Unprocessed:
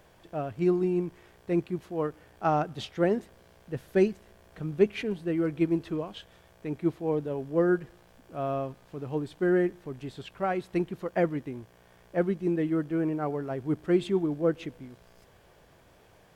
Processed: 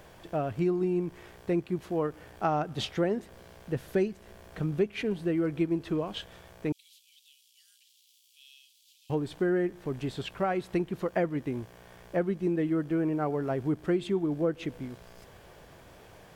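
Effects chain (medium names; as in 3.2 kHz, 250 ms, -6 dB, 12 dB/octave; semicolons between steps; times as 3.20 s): 6.72–9.10 s: steep high-pass 3 kHz 48 dB/octave; compression 3:1, threshold -33 dBFS, peak gain reduction 13 dB; trim +6 dB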